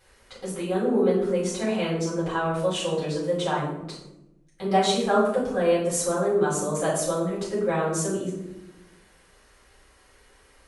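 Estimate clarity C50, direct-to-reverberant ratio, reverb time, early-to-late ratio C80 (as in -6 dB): 2.5 dB, -9.5 dB, 0.95 s, 5.5 dB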